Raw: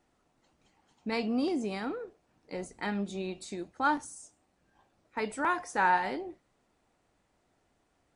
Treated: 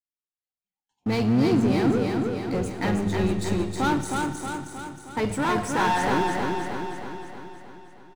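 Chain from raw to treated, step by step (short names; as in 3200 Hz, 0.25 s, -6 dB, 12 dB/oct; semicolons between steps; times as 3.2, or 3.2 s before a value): octaver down 1 oct, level -5 dB; spectral noise reduction 19 dB; gate with hold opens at -60 dBFS; sample leveller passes 3; low shelf 420 Hz +8.5 dB; notches 50/100/150/200 Hz; in parallel at -7.5 dB: wavefolder -22.5 dBFS; on the sum: feedback echo 0.315 s, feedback 57%, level -3.5 dB; on a send at -10.5 dB: reverb RT60 2.9 s, pre-delay 10 ms; on the sum: gain -6.5 dB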